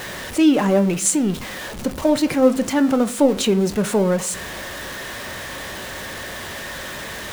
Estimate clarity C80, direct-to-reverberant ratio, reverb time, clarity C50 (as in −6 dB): 24.0 dB, 9.5 dB, 0.45 s, 18.5 dB